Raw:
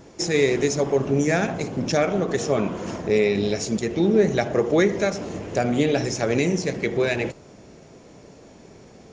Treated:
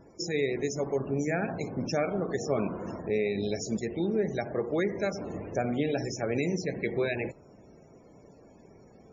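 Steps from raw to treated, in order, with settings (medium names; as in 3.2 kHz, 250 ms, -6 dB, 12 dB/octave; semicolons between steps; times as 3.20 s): loudest bins only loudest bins 64; gain riding within 3 dB 0.5 s; trim -8 dB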